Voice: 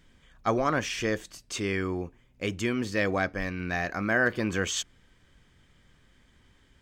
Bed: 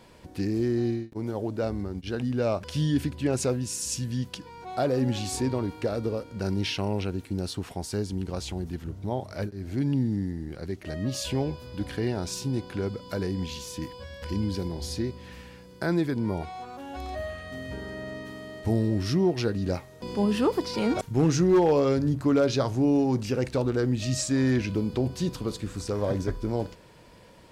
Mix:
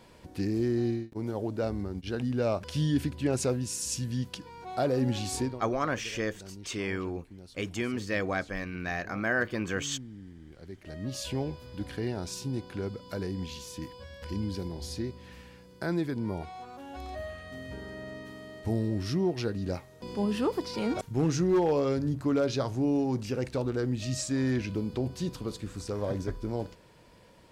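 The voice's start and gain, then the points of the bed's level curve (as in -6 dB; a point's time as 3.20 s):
5.15 s, -3.5 dB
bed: 5.42 s -2 dB
5.65 s -18 dB
10.14 s -18 dB
11.20 s -4.5 dB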